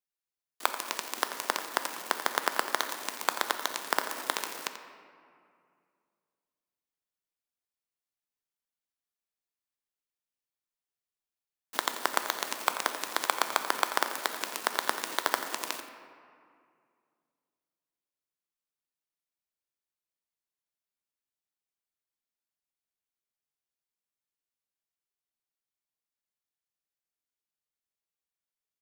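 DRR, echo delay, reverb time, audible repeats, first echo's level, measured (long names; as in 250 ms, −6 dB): 6.5 dB, 87 ms, 2.3 s, 1, −12.5 dB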